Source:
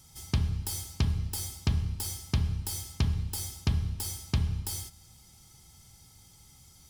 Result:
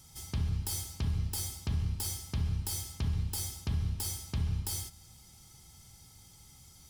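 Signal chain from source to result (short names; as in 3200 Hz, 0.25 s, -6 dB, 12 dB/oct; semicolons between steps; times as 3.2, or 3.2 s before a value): limiter -24 dBFS, peak gain reduction 9.5 dB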